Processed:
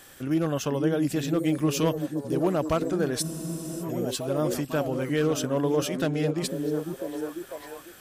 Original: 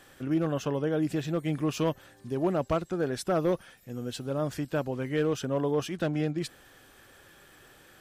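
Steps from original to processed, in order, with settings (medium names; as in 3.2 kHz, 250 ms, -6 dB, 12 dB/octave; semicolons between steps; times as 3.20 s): treble shelf 5.2 kHz +11 dB; repeats whose band climbs or falls 498 ms, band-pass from 230 Hz, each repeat 0.7 oct, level -2 dB; spectral freeze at 3.25 s, 0.57 s; trim +2 dB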